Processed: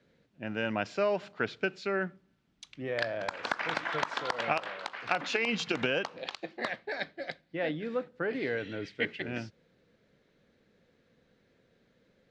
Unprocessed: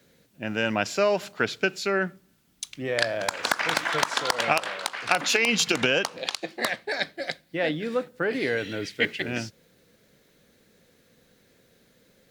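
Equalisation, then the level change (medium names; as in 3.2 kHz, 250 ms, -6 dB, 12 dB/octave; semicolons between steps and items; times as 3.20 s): distance through air 88 m; treble shelf 11 kHz -3 dB; peaking EQ 14 kHz -10 dB 1.7 oct; -5.5 dB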